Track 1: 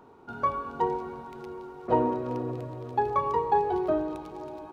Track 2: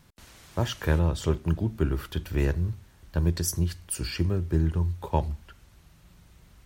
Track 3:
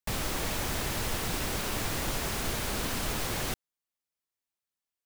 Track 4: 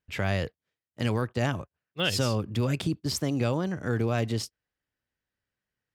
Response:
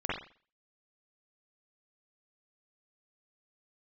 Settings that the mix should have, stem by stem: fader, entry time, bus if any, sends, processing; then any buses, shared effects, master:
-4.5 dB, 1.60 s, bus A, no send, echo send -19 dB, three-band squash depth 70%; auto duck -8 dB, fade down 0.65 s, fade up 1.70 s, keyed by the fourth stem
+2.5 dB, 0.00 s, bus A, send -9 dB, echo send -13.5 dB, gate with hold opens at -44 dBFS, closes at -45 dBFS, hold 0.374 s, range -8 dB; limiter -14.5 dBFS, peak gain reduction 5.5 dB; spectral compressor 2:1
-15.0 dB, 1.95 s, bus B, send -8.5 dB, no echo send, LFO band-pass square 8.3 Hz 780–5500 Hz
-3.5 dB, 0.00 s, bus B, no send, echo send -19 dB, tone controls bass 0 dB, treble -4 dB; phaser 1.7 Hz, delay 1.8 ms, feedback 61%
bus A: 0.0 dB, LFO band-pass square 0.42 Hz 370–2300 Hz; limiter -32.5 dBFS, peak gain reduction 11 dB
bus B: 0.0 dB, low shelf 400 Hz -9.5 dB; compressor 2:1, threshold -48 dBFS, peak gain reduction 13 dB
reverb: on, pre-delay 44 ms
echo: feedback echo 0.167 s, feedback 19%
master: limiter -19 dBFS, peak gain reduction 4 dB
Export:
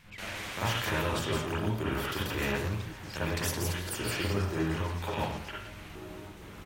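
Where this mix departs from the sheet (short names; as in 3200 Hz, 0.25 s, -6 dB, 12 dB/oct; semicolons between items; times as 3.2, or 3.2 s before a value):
stem 1 -4.5 dB -> -11.0 dB; stem 4 -3.5 dB -> -12.0 dB; master: missing limiter -19 dBFS, peak gain reduction 4 dB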